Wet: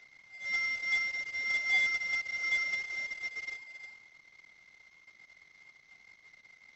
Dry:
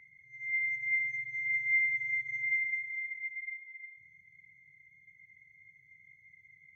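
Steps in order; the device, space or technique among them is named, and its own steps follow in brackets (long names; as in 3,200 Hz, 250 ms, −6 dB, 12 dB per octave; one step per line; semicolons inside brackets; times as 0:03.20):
early wireless headset (high-pass filter 250 Hz 12 dB per octave; variable-slope delta modulation 32 kbit/s)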